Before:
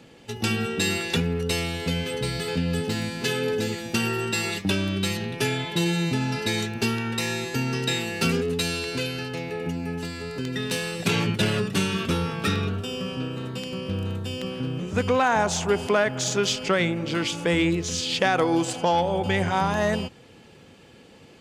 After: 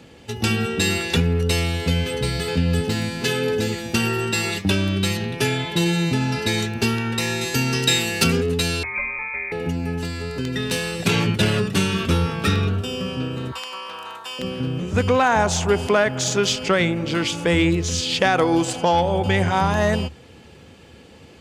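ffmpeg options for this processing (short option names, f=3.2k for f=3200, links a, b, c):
-filter_complex "[0:a]asettb=1/sr,asplit=3[a][b][c];[a]atrim=end=7.414[d];[b]atrim=start=7.41:end=8.24,asetpts=PTS-STARTPTS,afade=t=in:d=0.004:c=qsin,afade=t=out:st=0.826:d=0.004:c=qsin,highshelf=f=3k:g=8.5[e];[c]atrim=start=8.236[f];[d][e]acrossfade=d=0.004:c1=hsin:c2=qsin[g];[g][f]acrossfade=d=0.004:c1=qsin:c2=hsin,asettb=1/sr,asplit=3[h][i][j];[h]atrim=end=8.834[k];[i]atrim=start=8.83:end=9.52,asetpts=PTS-STARTPTS,afade=t=in:d=0.004:c=qsin,afade=t=out:st=0.686:d=0.004:c=qsin,lowpass=f=2.2k:t=q:w=0.5098,lowpass=f=2.2k:t=q:w=0.6013,lowpass=f=2.2k:t=q:w=0.9,lowpass=f=2.2k:t=q:w=2.563,afreqshift=-2600[l];[j]atrim=start=9.516[m];[k][l]acrossfade=d=0.004:c1=hsin:c2=qsin[n];[n][m]acrossfade=d=0.004:c1=qsin:c2=hsin,asettb=1/sr,asplit=3[o][p][q];[o]atrim=end=13.524[r];[p]atrim=start=13.52:end=14.39,asetpts=PTS-STARTPTS,afade=t=in:d=0.004:c=qsin,afade=t=out:st=0.866:d=0.004:c=qsin,highpass=f=1k:t=q:w=3.7[s];[q]atrim=start=14.386[t];[r][s]acrossfade=d=0.004:c1=hsin:c2=qsin[u];[u][t]acrossfade=d=0.004:c1=qsin:c2=hsin,equalizer=f=74:w=3.2:g=12,volume=3.5dB"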